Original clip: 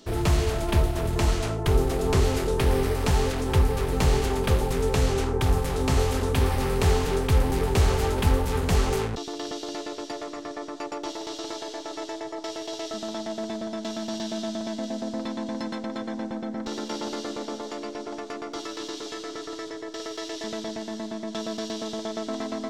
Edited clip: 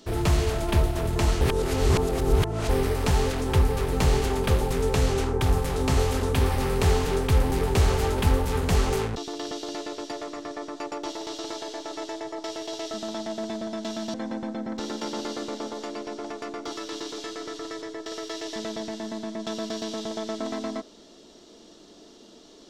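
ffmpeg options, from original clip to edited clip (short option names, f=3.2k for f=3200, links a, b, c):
-filter_complex "[0:a]asplit=4[a][b][c][d];[a]atrim=end=1.412[e];[b]atrim=start=1.408:end=2.692,asetpts=PTS-STARTPTS,areverse[f];[c]atrim=start=2.688:end=14.142[g];[d]atrim=start=16.018[h];[e][f]acrossfade=d=0.004:c1=hsin:c2=hsin[i];[i][g]acrossfade=d=0.004:c1=hsin:c2=hsin[j];[j][h]acrossfade=d=0.004:c1=hsin:c2=hsin"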